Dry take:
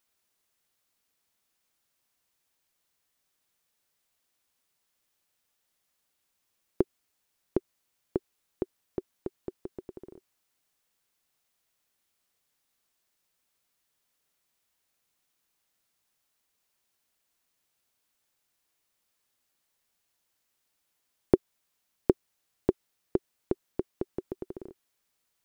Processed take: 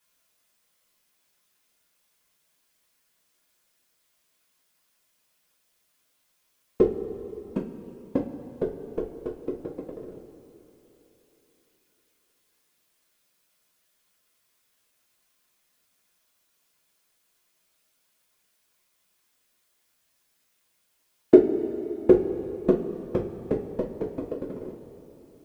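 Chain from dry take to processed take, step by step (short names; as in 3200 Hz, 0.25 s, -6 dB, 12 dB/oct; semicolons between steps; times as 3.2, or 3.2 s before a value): whisperiser; two-slope reverb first 0.25 s, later 3.6 s, from -18 dB, DRR -4.5 dB; gain +1.5 dB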